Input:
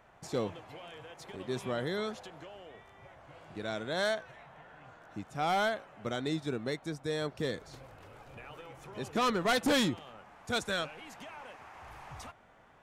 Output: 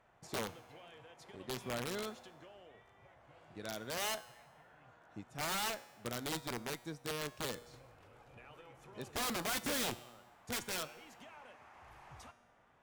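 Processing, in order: wrapped overs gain 26.5 dB; resonator 120 Hz, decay 1.1 s, harmonics all, mix 60%; added harmonics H 7 -29 dB, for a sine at -30.5 dBFS; gain +1.5 dB

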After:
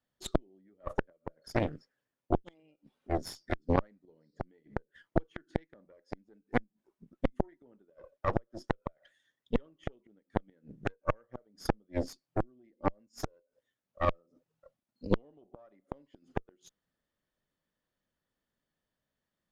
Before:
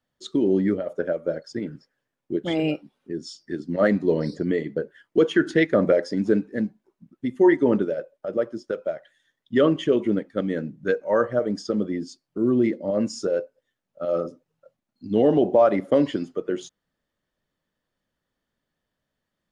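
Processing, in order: flipped gate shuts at -17 dBFS, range -35 dB; added harmonics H 3 -13 dB, 4 -10 dB, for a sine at -14.5 dBFS; gain +3.5 dB

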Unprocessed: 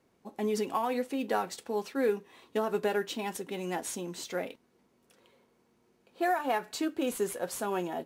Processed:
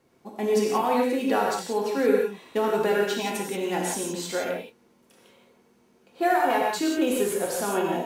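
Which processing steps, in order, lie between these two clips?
non-linear reverb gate 0.2 s flat, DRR -2 dB; gain +3.5 dB

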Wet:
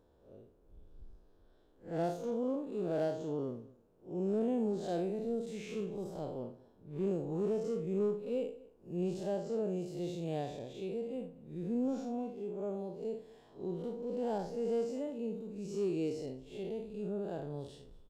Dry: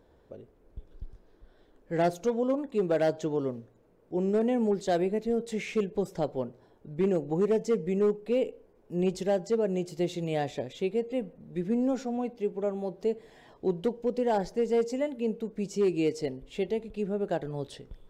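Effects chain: time blur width 0.128 s; bell 2000 Hz -9 dB 0.49 oct; on a send: echo 0.226 s -23 dB; on the sum: gain -5 dB

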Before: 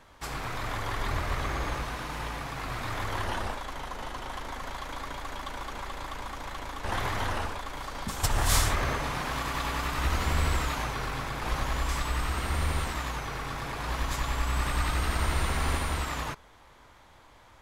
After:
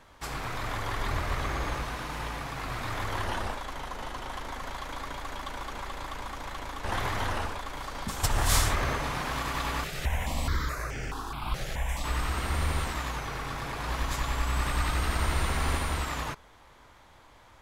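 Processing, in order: 9.84–12.04 step phaser 4.7 Hz 270–3900 Hz

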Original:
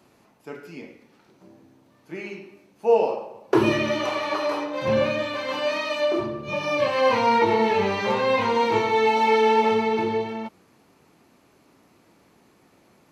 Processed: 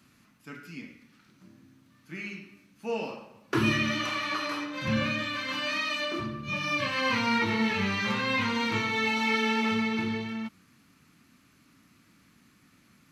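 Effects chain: band shelf 580 Hz -14.5 dB

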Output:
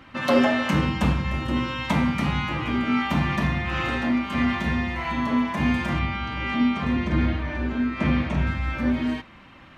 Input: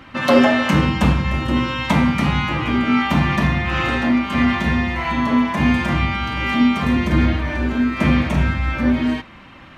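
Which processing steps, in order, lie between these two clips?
5.99–8.47 air absorption 81 m; gain -6 dB

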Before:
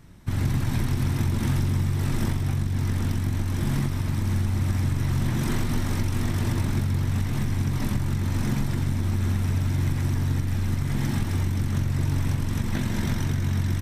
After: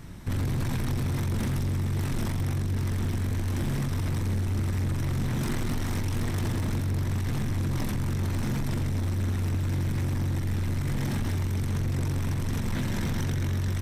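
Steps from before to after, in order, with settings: limiter -23.5 dBFS, peak gain reduction 10.5 dB; soft clip -30.5 dBFS, distortion -13 dB; gain +7 dB

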